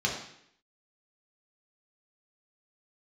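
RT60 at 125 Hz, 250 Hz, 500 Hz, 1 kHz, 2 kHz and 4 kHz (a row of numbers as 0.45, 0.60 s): 0.70, 0.75, 0.70, 0.70, 0.75, 0.70 s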